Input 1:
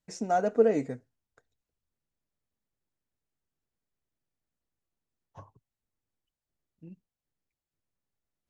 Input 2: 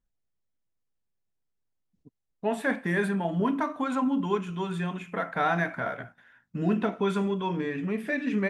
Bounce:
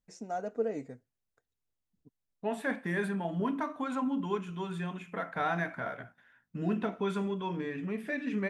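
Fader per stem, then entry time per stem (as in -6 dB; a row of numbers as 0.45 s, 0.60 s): -9.5 dB, -5.5 dB; 0.00 s, 0.00 s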